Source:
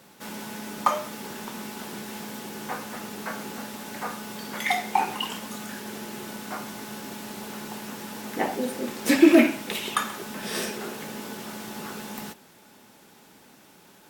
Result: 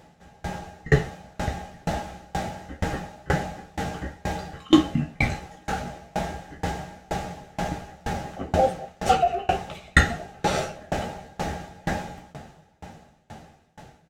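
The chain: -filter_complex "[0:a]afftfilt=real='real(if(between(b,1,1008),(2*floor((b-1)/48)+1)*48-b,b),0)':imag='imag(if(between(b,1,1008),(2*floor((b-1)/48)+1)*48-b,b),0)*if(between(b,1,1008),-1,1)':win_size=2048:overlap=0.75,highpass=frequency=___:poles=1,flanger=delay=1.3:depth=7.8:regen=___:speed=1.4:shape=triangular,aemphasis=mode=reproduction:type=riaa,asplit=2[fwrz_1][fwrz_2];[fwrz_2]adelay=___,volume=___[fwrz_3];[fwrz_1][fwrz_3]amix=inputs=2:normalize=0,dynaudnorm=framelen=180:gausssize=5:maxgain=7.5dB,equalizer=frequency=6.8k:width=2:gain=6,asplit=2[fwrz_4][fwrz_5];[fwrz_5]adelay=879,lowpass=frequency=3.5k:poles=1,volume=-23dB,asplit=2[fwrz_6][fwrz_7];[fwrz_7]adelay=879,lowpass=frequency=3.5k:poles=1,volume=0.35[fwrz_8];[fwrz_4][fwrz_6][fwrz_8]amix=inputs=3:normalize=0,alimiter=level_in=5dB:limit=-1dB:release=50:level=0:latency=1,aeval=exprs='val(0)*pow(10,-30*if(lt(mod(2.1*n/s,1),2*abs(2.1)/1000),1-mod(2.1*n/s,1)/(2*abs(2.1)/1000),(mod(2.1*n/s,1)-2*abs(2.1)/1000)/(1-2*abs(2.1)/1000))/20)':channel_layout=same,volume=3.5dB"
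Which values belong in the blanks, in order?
64, 80, 13, -6.5dB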